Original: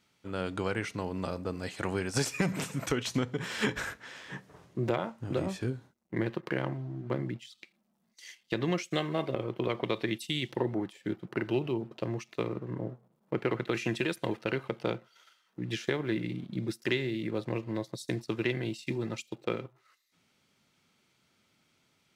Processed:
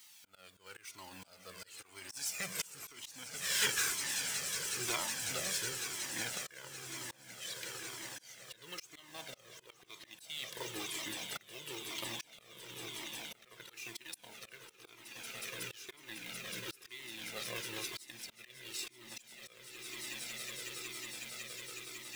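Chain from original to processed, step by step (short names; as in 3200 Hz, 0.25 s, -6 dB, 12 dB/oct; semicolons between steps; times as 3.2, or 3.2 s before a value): G.711 law mismatch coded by mu; pre-emphasis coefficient 0.97; in parallel at -6.5 dB: requantised 6-bit, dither none; on the sum: soft clip -29.5 dBFS, distortion -13 dB; on a send: swelling echo 0.184 s, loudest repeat 8, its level -16 dB; on the sum: auto swell 0.588 s; cascading flanger falling 1 Hz; gain +13.5 dB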